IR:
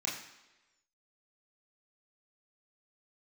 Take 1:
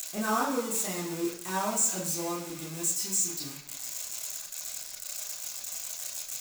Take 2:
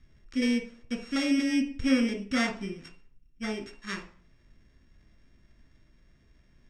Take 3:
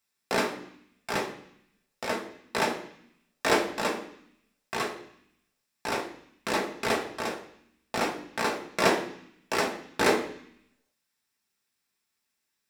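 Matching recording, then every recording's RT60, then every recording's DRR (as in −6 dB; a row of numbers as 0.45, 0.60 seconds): 1; 1.1, 0.45, 0.65 seconds; −5.5, 4.5, 1.5 decibels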